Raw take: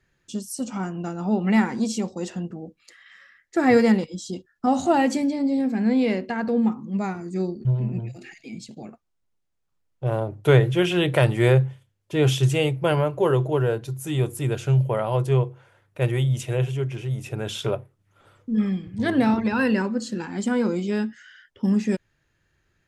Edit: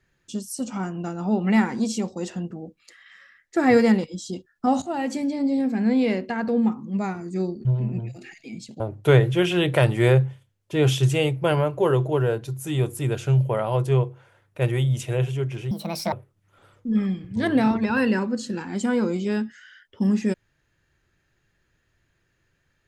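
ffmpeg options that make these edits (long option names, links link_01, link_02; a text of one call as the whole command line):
ffmpeg -i in.wav -filter_complex "[0:a]asplit=5[link_01][link_02][link_03][link_04][link_05];[link_01]atrim=end=4.82,asetpts=PTS-STARTPTS,afade=type=out:start_time=4.816:duration=0.004:curve=hsin:silence=0.211349[link_06];[link_02]atrim=start=4.82:end=8.802,asetpts=PTS-STARTPTS,afade=type=in:duration=0.62:silence=0.211349[link_07];[link_03]atrim=start=10.198:end=17.114[link_08];[link_04]atrim=start=17.11:end=17.75,asetpts=PTS-STARTPTS,asetrate=68355,aresample=44100,atrim=end_sample=18209,asetpts=PTS-STARTPTS[link_09];[link_05]atrim=start=17.746[link_10];[link_06][link_07]concat=n=2:v=0:a=1[link_11];[link_11][link_08]acrossfade=duration=0.004:curve1=hsin:curve2=hsin[link_12];[link_12][link_09]acrossfade=duration=0.004:curve1=hsin:curve2=hsin[link_13];[link_13][link_10]acrossfade=duration=0.004:curve1=hsin:curve2=hsin" out.wav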